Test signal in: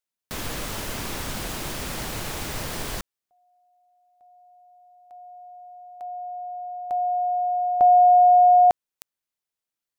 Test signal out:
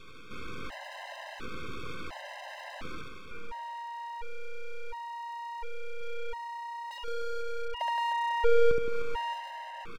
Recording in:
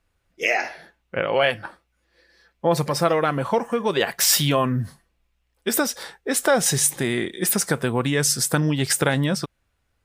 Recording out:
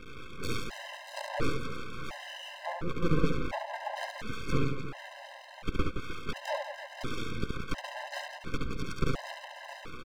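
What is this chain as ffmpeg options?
-filter_complex "[0:a]aeval=exprs='val(0)+0.5*0.0631*sgn(val(0))':c=same,highpass=f=170:w=0.5412,highpass=f=170:w=1.3066,highpass=f=280:t=q:w=0.5412,highpass=f=280:t=q:w=1.307,lowpass=f=2.4k:t=q:w=0.5176,lowpass=f=2.4k:t=q:w=0.7071,lowpass=f=2.4k:t=q:w=1.932,afreqshift=-250,aeval=exprs='0.473*(cos(1*acos(clip(val(0)/0.473,-1,1)))-cos(1*PI/2))+0.119*(cos(2*acos(clip(val(0)/0.473,-1,1)))-cos(2*PI/2))+0.0106*(cos(4*acos(clip(val(0)/0.473,-1,1)))-cos(4*PI/2))+0.106*(cos(7*acos(clip(val(0)/0.473,-1,1)))-cos(7*PI/2))+0.0168*(cos(8*acos(clip(val(0)/0.473,-1,1)))-cos(8*PI/2))':c=same,asplit=2[a][b];[b]aecho=0:1:623|1246:0.0891|0.0267[c];[a][c]amix=inputs=2:normalize=0,acrossover=split=230[d][e];[e]acompressor=threshold=-28dB:ratio=4:attack=2.1:release=424:knee=2.83:detection=peak[f];[d][f]amix=inputs=2:normalize=0,asplit=2[g][h];[h]aecho=0:1:70|168|305.2|497.3|766.2:0.631|0.398|0.251|0.158|0.1[i];[g][i]amix=inputs=2:normalize=0,aeval=exprs='abs(val(0))':c=same,afftfilt=real='re*gt(sin(2*PI*0.71*pts/sr)*(1-2*mod(floor(b*sr/1024/530),2)),0)':imag='im*gt(sin(2*PI*0.71*pts/sr)*(1-2*mod(floor(b*sr/1024/530),2)),0)':win_size=1024:overlap=0.75"

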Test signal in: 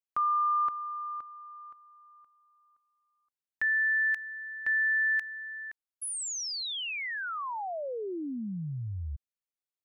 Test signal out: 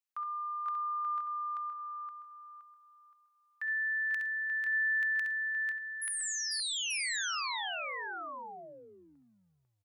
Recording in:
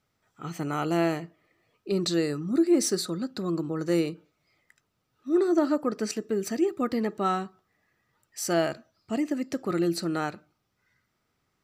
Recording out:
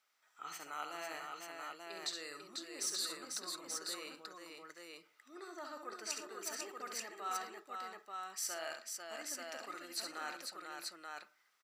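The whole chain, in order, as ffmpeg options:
-af "areverse,acompressor=threshold=-35dB:ratio=4:attack=3.8:release=153:knee=1:detection=peak,areverse,highpass=1k,aecho=1:1:55|67|111|495|884:0.119|0.447|0.1|0.596|0.668"

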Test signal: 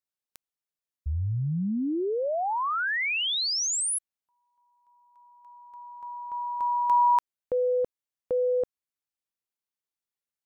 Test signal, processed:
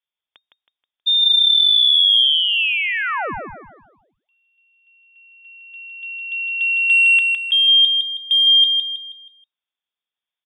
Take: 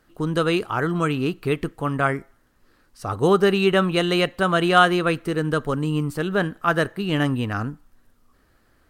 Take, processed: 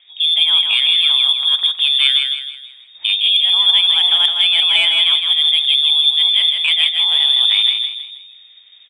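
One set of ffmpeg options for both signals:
-filter_complex "[0:a]lowshelf=f=580:t=q:w=1.5:g=8,lowpass=f=3.1k:t=q:w=0.5098,lowpass=f=3.1k:t=q:w=0.6013,lowpass=f=3.1k:t=q:w=0.9,lowpass=f=3.1k:t=q:w=2.563,afreqshift=-3700,areverse,acompressor=threshold=-21dB:ratio=16:attack=40:release=26:knee=1:detection=rms,areverse,equalizer=f=2.7k:w=5.8:g=6,acontrast=44,asplit=2[a][b];[b]aecho=0:1:160|320|480|640|800:0.562|0.219|0.0855|0.0334|0.013[c];[a][c]amix=inputs=2:normalize=0,volume=-1dB"

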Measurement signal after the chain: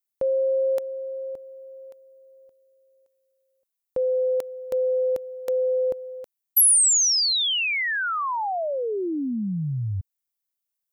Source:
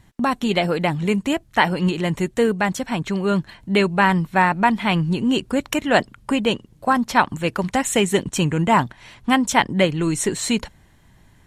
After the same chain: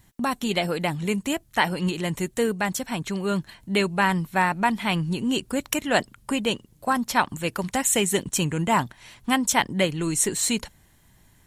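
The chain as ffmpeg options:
-af "aemphasis=mode=production:type=50kf,volume=-5.5dB"

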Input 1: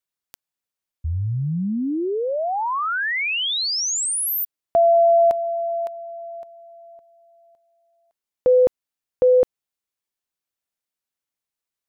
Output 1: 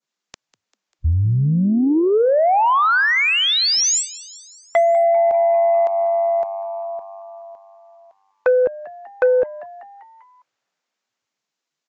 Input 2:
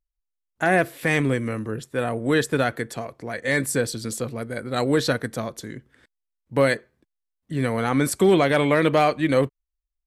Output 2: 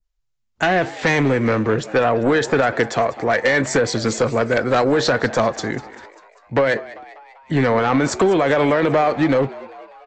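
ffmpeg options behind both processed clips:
-filter_complex "[0:a]adynamicequalizer=threshold=0.02:dfrequency=2900:dqfactor=0.72:tfrequency=2900:tqfactor=0.72:attack=5:release=100:ratio=0.375:range=2:mode=cutabove:tftype=bell,acrossover=split=420|2200[a][b][c];[b]dynaudnorm=f=170:g=13:m=9dB[d];[a][d][c]amix=inputs=3:normalize=0,alimiter=limit=-11dB:level=0:latency=1:release=29,acompressor=threshold=-25dB:ratio=4:attack=98:release=248:knee=1:detection=peak,aresample=16000,aeval=exprs='0.299*sin(PI/2*1.78*val(0)/0.299)':c=same,aresample=44100,asplit=6[e][f][g][h][i][j];[f]adelay=197,afreqshift=99,volume=-18.5dB[k];[g]adelay=394,afreqshift=198,volume=-23.2dB[l];[h]adelay=591,afreqshift=297,volume=-28dB[m];[i]adelay=788,afreqshift=396,volume=-32.7dB[n];[j]adelay=985,afreqshift=495,volume=-37.4dB[o];[e][k][l][m][n][o]amix=inputs=6:normalize=0" -ar 32000 -c:a libvorbis -b:a 64k

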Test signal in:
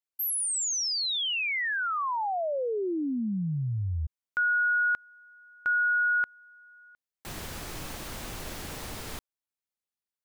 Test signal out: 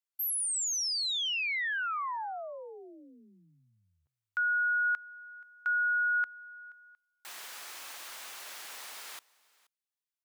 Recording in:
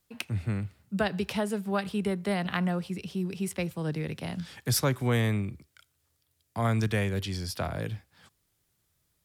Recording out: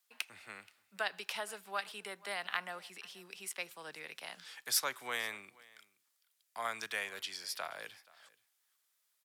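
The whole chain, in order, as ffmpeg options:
-filter_complex "[0:a]highpass=1k,asplit=2[a][b];[b]aecho=0:1:478:0.0668[c];[a][c]amix=inputs=2:normalize=0,volume=-2.5dB"

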